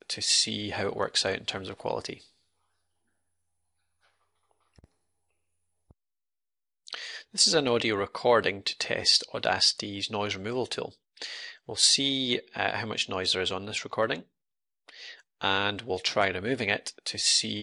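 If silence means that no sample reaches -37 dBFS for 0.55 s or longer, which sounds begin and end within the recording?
6.88–14.2

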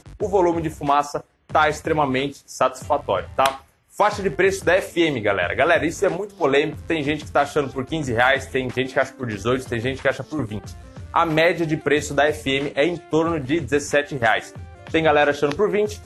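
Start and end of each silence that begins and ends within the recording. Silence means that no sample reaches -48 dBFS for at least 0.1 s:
1.23–1.49
3.71–3.9

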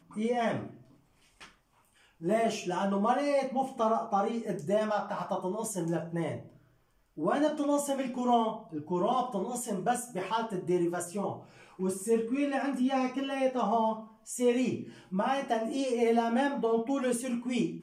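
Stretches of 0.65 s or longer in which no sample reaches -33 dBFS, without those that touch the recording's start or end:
0.66–2.24
6.36–7.19

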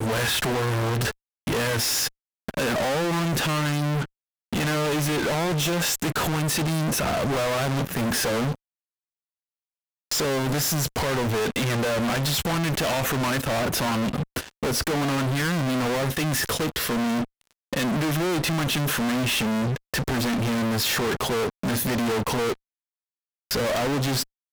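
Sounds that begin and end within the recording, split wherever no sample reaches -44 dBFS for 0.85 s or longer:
10.11–22.55

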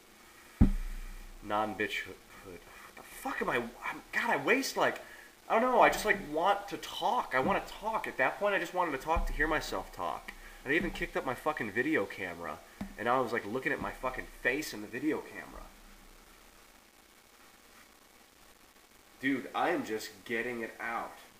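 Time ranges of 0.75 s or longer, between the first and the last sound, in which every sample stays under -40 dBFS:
15.62–19.23

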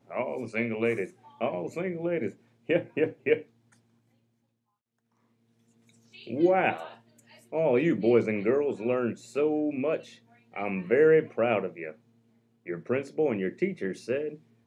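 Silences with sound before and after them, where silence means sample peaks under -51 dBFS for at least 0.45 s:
3.73–5.89
11.96–12.66

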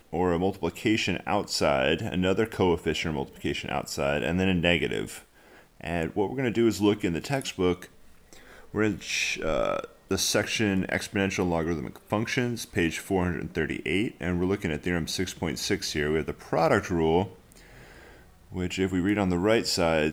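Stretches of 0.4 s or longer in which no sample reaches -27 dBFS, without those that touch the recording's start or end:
5.05–5.84
7.82–8.75
17.24–18.57

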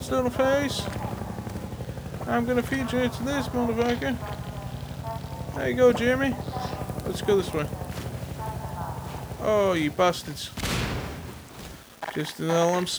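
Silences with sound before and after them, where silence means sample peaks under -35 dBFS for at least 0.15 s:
11.75–12.02

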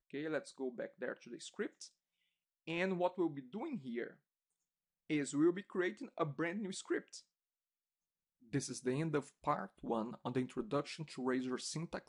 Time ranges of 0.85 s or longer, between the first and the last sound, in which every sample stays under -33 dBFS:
1.66–2.68
4.04–5.1
6.98–8.54

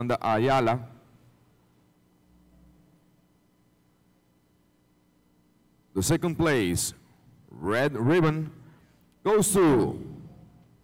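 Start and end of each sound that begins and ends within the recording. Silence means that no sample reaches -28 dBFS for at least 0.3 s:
5.97–6.89
7.64–8.44
9.26–9.96

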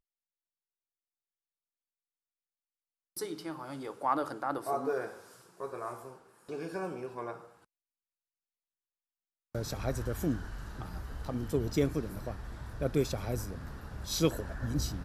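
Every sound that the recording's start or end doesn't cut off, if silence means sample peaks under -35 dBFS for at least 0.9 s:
3.17–7.32

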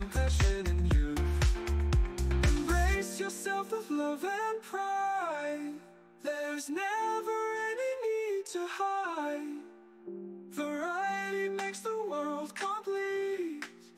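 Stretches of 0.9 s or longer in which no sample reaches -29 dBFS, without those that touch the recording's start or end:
9.36–10.58

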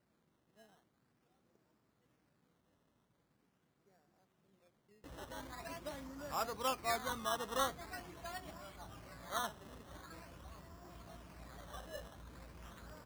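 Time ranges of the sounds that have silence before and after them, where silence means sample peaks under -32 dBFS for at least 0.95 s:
6.34–7.67
9.35–9.45

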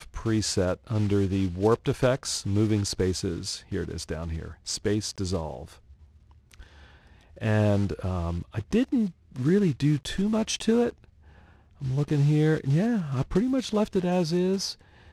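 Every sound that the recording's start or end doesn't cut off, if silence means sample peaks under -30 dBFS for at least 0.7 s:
7.42–10.9

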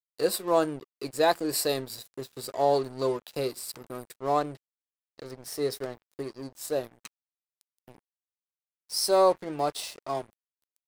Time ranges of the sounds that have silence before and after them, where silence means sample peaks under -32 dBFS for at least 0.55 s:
5.19–7.06
8.91–10.21

